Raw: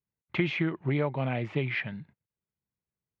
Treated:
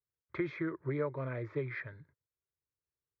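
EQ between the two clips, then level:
high-frequency loss of the air 150 metres
phaser with its sweep stopped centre 770 Hz, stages 6
−2.5 dB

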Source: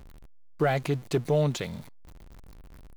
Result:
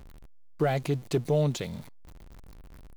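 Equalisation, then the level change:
dynamic equaliser 1,500 Hz, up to −5 dB, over −43 dBFS, Q 0.73
0.0 dB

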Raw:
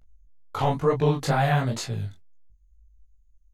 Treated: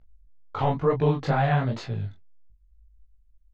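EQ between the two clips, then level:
high-frequency loss of the air 210 metres
0.0 dB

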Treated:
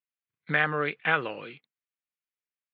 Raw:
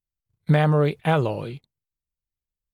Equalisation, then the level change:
spectral tilt +4 dB per octave
dynamic equaliser 1,600 Hz, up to +5 dB, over −39 dBFS, Q 2.4
loudspeaker in its box 210–2,600 Hz, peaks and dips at 390 Hz −5 dB, 620 Hz −8 dB, 890 Hz −9 dB
0.0 dB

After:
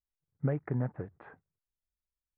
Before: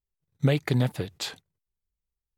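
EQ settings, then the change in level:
Butterworth low-pass 1,700 Hz 36 dB per octave
−8.0 dB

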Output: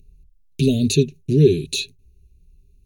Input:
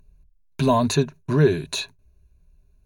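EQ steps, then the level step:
elliptic band-stop filter 420–2,700 Hz, stop band 80 dB
+4.5 dB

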